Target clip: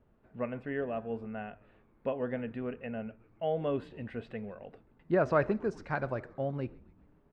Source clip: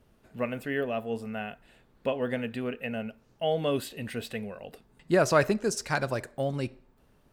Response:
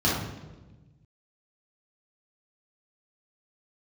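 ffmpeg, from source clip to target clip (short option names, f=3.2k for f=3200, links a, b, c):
-filter_complex "[0:a]lowpass=1.7k,asplit=6[a][b][c][d][e][f];[b]adelay=133,afreqshift=-110,volume=-23.5dB[g];[c]adelay=266,afreqshift=-220,volume=-27.2dB[h];[d]adelay=399,afreqshift=-330,volume=-31dB[i];[e]adelay=532,afreqshift=-440,volume=-34.7dB[j];[f]adelay=665,afreqshift=-550,volume=-38.5dB[k];[a][g][h][i][j][k]amix=inputs=6:normalize=0,volume=-4dB"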